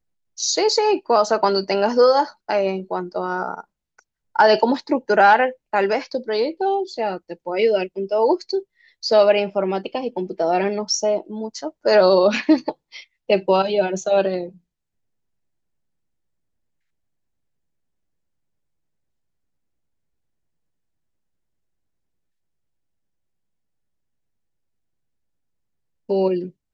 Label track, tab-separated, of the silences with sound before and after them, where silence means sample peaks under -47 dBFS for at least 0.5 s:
14.580000	26.090000	silence